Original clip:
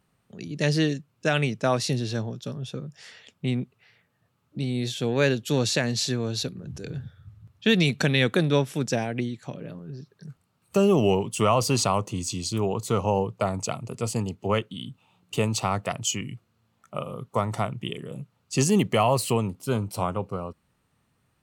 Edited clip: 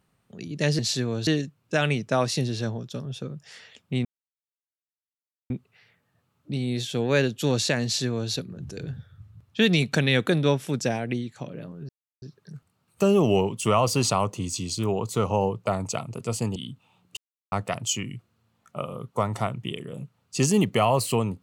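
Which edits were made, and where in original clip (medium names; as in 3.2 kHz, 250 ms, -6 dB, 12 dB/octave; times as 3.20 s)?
3.57 s: insert silence 1.45 s
5.91–6.39 s: copy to 0.79 s
9.96 s: insert silence 0.33 s
14.30–14.74 s: delete
15.35–15.70 s: mute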